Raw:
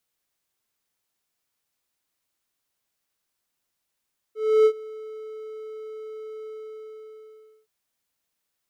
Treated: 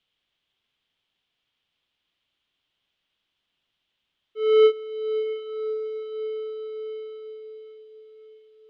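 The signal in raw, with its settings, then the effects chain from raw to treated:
ADSR triangle 435 Hz, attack 0.303 s, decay 70 ms, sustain -22.5 dB, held 2.11 s, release 1.21 s -10 dBFS
synth low-pass 3200 Hz, resonance Q 5; low shelf 360 Hz +5 dB; on a send: diffused feedback echo 0.607 s, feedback 55%, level -12.5 dB

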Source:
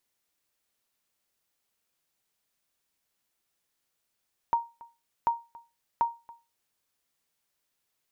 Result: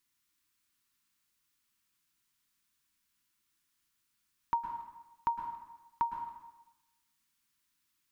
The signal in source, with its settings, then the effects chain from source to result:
sonar ping 933 Hz, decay 0.27 s, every 0.74 s, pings 3, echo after 0.28 s, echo -22.5 dB -17 dBFS
band shelf 580 Hz -14.5 dB 1.2 oct; plate-style reverb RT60 0.99 s, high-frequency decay 0.9×, pre-delay 0.1 s, DRR 5 dB

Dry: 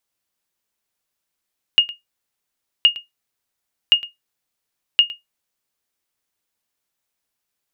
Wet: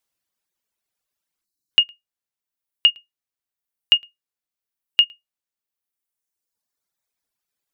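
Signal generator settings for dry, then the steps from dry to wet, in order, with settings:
sonar ping 2850 Hz, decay 0.16 s, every 1.07 s, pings 4, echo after 0.11 s, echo -18.5 dB -3.5 dBFS
reverb removal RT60 1.9 s; spectral delete 1.45–1.71, 380–3800 Hz

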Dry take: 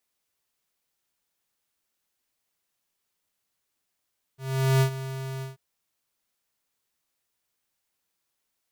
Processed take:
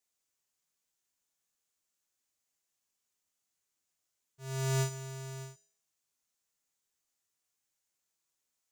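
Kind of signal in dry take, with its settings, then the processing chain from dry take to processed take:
ADSR square 133 Hz, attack 0.43 s, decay 88 ms, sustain -14.5 dB, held 1.04 s, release 0.146 s -19 dBFS
bell 6900 Hz +9 dB 0.66 oct; resonator 82 Hz, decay 0.6 s, harmonics all, mix 70%

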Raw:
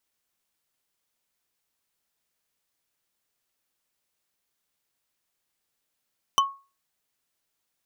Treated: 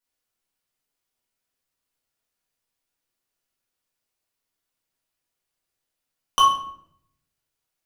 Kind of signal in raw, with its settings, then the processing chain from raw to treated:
wood hit bar, lowest mode 1100 Hz, decay 0.32 s, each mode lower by 3 dB, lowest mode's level -14 dB
gate -52 dBFS, range -9 dB; shoebox room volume 140 m³, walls mixed, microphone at 1.8 m

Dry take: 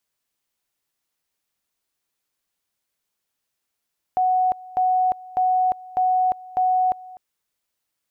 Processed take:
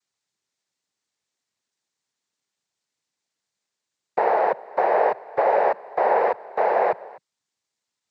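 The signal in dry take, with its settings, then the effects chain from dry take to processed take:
two-level tone 740 Hz -16 dBFS, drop 21 dB, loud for 0.35 s, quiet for 0.25 s, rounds 5
noise vocoder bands 6

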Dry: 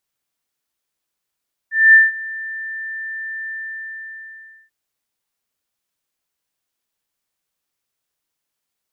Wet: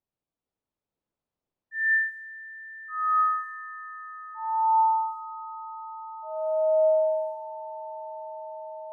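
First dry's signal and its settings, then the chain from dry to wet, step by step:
ADSR sine 1780 Hz, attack 0.227 s, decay 0.176 s, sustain -21 dB, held 1.78 s, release 1.21 s -4 dBFS
echoes that change speed 0.461 s, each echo -6 st, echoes 3; bell 1700 Hz -13.5 dB 1.7 oct; low-pass opened by the level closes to 1700 Hz, open at -25 dBFS

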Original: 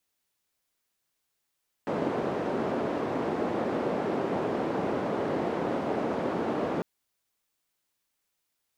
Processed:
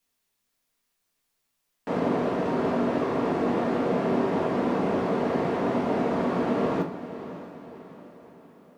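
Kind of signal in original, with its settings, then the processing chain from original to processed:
noise band 230–490 Hz, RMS -29.5 dBFS 4.95 s
diffused feedback echo 0.597 s, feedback 47%, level -13 dB; shoebox room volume 230 m³, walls furnished, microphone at 1.7 m

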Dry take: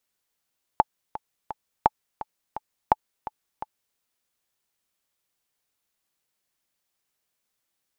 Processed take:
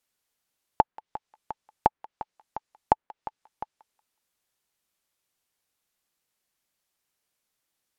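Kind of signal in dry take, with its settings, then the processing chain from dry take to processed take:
metronome 170 bpm, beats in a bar 3, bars 3, 862 Hz, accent 15.5 dB -3 dBFS
treble ducked by the level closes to 2100 Hz, closed at -30 dBFS; thinning echo 0.184 s, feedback 32%, high-pass 1200 Hz, level -19 dB; wow and flutter 19 cents

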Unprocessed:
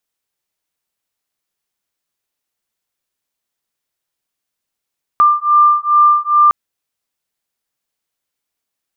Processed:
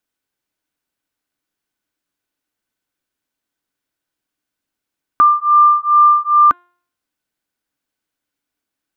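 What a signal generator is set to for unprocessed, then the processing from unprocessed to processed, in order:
beating tones 1190 Hz, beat 2.4 Hz, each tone -11 dBFS 1.31 s
tone controls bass +2 dB, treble -4 dB; de-hum 352.4 Hz, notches 11; small resonant body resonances 290/1500 Hz, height 10 dB, ringing for 45 ms

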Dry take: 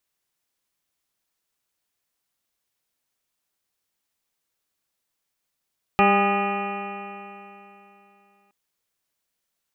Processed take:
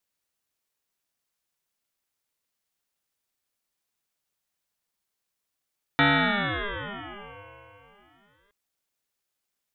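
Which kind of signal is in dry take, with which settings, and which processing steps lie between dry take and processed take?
stretched partials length 2.52 s, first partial 198 Hz, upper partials -0.5/-5.5/4/-14/1/-18.5/-14/-8.5/-19/-2/-7.5/-16.5 dB, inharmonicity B 0.0021, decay 3.10 s, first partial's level -21 dB
HPF 50 Hz; ring modulator with a swept carrier 680 Hz, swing 60%, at 0.33 Hz

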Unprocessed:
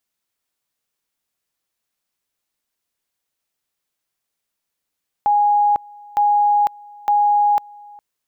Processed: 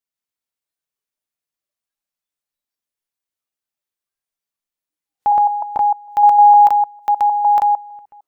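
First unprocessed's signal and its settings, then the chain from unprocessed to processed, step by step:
two-level tone 826 Hz -12 dBFS, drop 25.5 dB, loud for 0.50 s, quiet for 0.41 s, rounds 3
reverse delay 0.152 s, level -1 dB; dynamic EQ 970 Hz, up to +3 dB, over -21 dBFS, Q 1.2; spectral noise reduction 12 dB

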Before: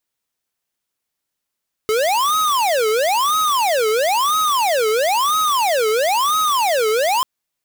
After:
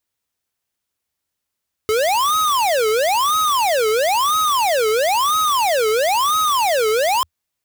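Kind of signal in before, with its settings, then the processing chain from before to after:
siren wail 428–1270 Hz 1/s square -17 dBFS 5.34 s
bell 81 Hz +10.5 dB 0.63 oct

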